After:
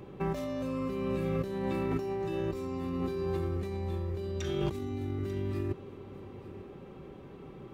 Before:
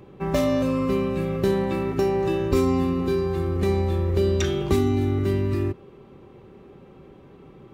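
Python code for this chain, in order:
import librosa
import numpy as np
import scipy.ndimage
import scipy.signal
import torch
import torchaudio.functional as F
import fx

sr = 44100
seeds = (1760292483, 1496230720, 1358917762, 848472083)

p1 = fx.over_compress(x, sr, threshold_db=-28.0, ratio=-1.0)
p2 = p1 + fx.echo_single(p1, sr, ms=893, db=-17.0, dry=0)
y = p2 * 10.0 ** (-5.5 / 20.0)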